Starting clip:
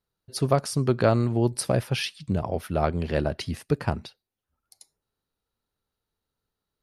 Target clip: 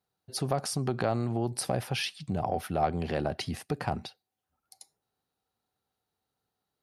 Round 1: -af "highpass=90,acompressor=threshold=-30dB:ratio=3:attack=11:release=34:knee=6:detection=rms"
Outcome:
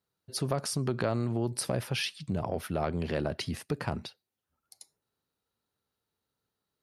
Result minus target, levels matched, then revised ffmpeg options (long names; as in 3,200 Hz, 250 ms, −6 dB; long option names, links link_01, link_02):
1,000 Hz band −5.0 dB
-af "highpass=90,acompressor=threshold=-30dB:ratio=3:attack=11:release=34:knee=6:detection=rms,equalizer=frequency=760:width=7.6:gain=12"